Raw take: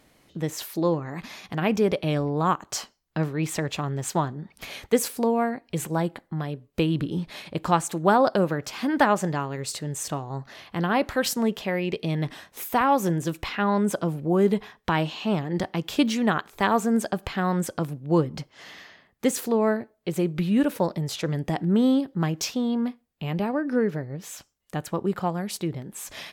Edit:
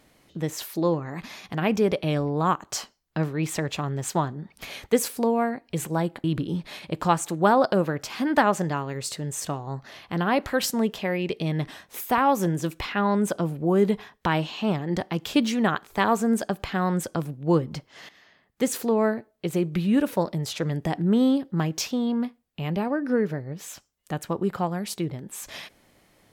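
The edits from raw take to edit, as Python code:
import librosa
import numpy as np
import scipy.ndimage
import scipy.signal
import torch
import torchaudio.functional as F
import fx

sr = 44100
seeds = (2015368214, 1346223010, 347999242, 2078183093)

y = fx.edit(x, sr, fx.cut(start_s=6.24, length_s=0.63),
    fx.fade_in_from(start_s=18.72, length_s=0.66, floor_db=-13.5), tone=tone)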